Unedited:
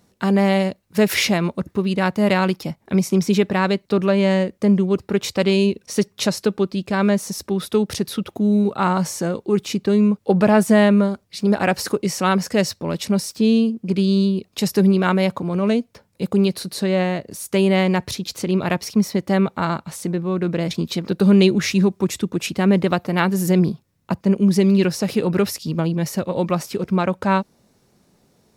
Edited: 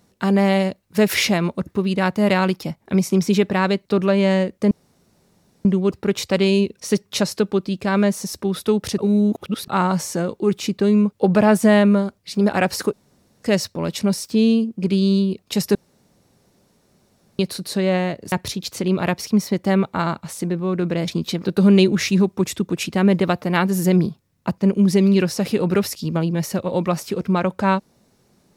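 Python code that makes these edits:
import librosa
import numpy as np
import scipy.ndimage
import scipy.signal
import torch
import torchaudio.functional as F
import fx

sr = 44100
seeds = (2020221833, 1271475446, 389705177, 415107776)

y = fx.edit(x, sr, fx.insert_room_tone(at_s=4.71, length_s=0.94),
    fx.reverse_span(start_s=8.04, length_s=0.7),
    fx.room_tone_fill(start_s=11.99, length_s=0.5),
    fx.room_tone_fill(start_s=14.81, length_s=1.64),
    fx.cut(start_s=17.38, length_s=0.57), tone=tone)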